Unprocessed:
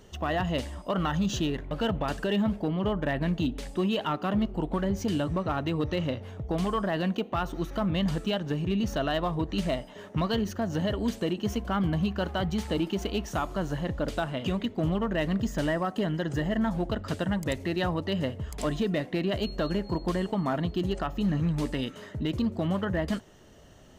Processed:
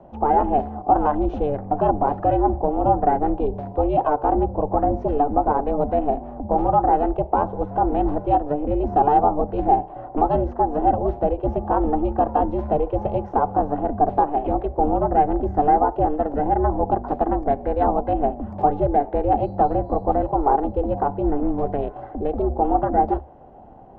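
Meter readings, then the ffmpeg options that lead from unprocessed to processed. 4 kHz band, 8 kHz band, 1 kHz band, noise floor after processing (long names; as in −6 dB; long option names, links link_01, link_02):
below −15 dB, below −30 dB, +17.0 dB, −39 dBFS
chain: -af "aeval=exprs='val(0)*sin(2*PI*220*n/s)':channel_layout=same,lowpass=frequency=850:width_type=q:width=4.9,afreqshift=-72,volume=7dB"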